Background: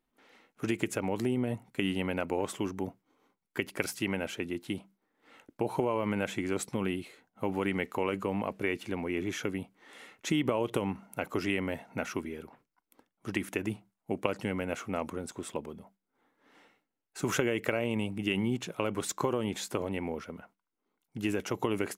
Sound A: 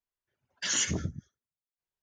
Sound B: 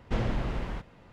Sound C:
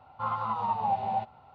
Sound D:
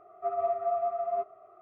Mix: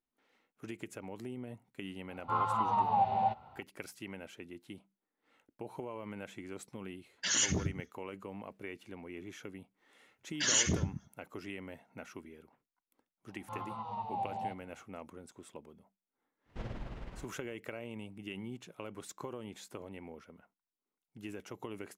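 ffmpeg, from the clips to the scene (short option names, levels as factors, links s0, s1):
-filter_complex "[3:a]asplit=2[s0][s1];[1:a]asplit=2[s2][s3];[0:a]volume=0.224[s4];[s3]asplit=2[s5][s6];[s6]adelay=105,volume=0.0891,highshelf=f=4000:g=-2.36[s7];[s5][s7]amix=inputs=2:normalize=0[s8];[s1]equalizer=f=1400:w=1.5:g=-10.5[s9];[2:a]tremolo=f=19:d=0.48[s10];[s0]atrim=end=1.54,asetpts=PTS-STARTPTS,volume=0.944,afade=t=in:d=0.004:c=hsin,afade=t=out:st=1.536:d=0.004:c=hsin,adelay=2090[s11];[s2]atrim=end=2.02,asetpts=PTS-STARTPTS,volume=0.841,afade=t=in:d=0.004:c=hsin,afade=t=out:st=2.016:d=0.004:c=hsin,adelay=6610[s12];[s8]atrim=end=2.02,asetpts=PTS-STARTPTS,afade=t=in:d=0.004:c=hsin,afade=t=out:st=2.016:d=0.004:c=hsin,adelay=431298S[s13];[s9]atrim=end=1.54,asetpts=PTS-STARTPTS,volume=0.473,afade=t=in:d=0.004:c=hsin,afade=t=out:st=1.536:d=0.004:c=hsin,adelay=13290[s14];[s10]atrim=end=1.12,asetpts=PTS-STARTPTS,volume=0.282,afade=t=in:d=0.05,afade=t=out:st=1.07:d=0.05,adelay=16450[s15];[s4][s11][s12][s13][s14][s15]amix=inputs=6:normalize=0"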